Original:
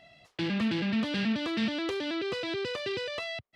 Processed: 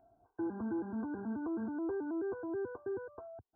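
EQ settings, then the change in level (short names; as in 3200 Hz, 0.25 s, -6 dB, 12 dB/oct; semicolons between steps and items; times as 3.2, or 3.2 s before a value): brick-wall FIR low-pass 1600 Hz; fixed phaser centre 850 Hz, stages 8; -2.5 dB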